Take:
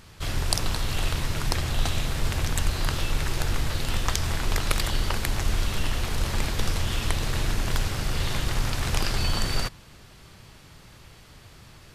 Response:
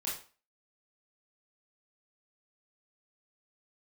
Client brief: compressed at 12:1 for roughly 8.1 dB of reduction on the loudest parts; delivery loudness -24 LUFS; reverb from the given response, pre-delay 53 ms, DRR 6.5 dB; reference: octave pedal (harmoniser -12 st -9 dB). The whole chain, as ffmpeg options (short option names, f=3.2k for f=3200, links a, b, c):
-filter_complex "[0:a]acompressor=threshold=-26dB:ratio=12,asplit=2[a][b];[1:a]atrim=start_sample=2205,adelay=53[c];[b][c]afir=irnorm=-1:irlink=0,volume=-9dB[d];[a][d]amix=inputs=2:normalize=0,asplit=2[e][f];[f]asetrate=22050,aresample=44100,atempo=2,volume=-9dB[g];[e][g]amix=inputs=2:normalize=0,volume=9dB"